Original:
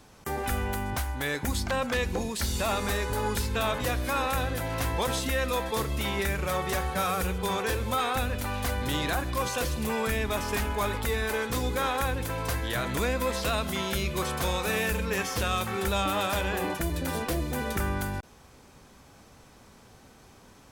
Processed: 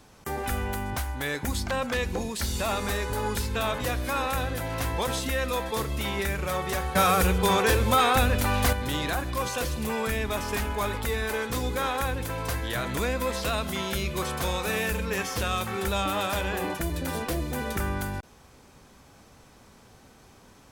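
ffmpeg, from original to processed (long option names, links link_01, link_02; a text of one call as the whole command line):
ffmpeg -i in.wav -filter_complex "[0:a]asettb=1/sr,asplit=3[link_01][link_02][link_03];[link_01]atrim=end=6.954[link_04];[link_02]atrim=start=6.95:end=8.73,asetpts=PTS-STARTPTS,afade=type=in:duration=0.004:curve=qsin,afade=type=out:start_time=1.776:duration=0.004:curve=qsin,acontrast=75[link_05];[link_03]atrim=start=8.726[link_06];[link_04][link_05]acrossfade=duration=0.004:curve1=hsin:curve2=qsin[link_07];[link_07][link_06]acrossfade=duration=0.004:curve1=qsin:curve2=hsin" out.wav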